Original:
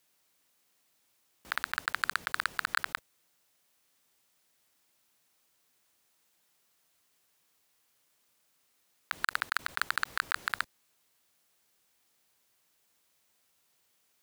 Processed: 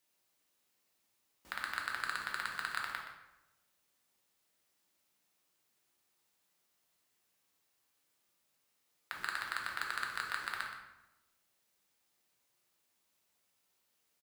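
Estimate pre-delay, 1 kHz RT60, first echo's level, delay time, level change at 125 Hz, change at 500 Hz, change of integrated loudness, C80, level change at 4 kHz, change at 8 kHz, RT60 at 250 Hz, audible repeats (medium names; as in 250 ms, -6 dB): 3 ms, 0.90 s, -11.0 dB, 123 ms, -4.5 dB, -4.5 dB, -5.5 dB, 5.5 dB, -5.5 dB, -6.0 dB, 1.1 s, 1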